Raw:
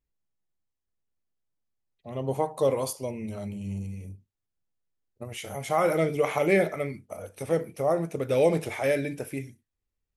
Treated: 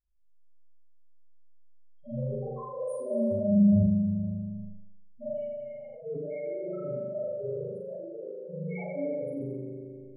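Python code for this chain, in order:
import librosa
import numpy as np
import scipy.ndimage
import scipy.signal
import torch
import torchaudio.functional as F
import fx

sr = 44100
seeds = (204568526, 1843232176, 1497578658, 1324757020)

y = fx.zero_step(x, sr, step_db=-39.0, at=(3.06, 3.79))
y = fx.highpass(y, sr, hz=fx.line((7.96, 450.0), (8.42, 160.0)), slope=12, at=(7.96, 8.42), fade=0.02)
y = fx.transient(y, sr, attack_db=5, sustain_db=-11)
y = fx.over_compress(y, sr, threshold_db=-29.0, ratio=-0.5)
y = fx.gate_flip(y, sr, shuts_db=-30.0, range_db=-28, at=(5.25, 5.98))
y = fx.spec_topn(y, sr, count=1)
y = fx.room_flutter(y, sr, wall_m=7.6, rt60_s=0.95)
y = fx.rev_spring(y, sr, rt60_s=1.4, pass_ms=(39,), chirp_ms=50, drr_db=-9.5)
y = fx.sustainer(y, sr, db_per_s=21.0)
y = F.gain(torch.from_numpy(y), -4.0).numpy()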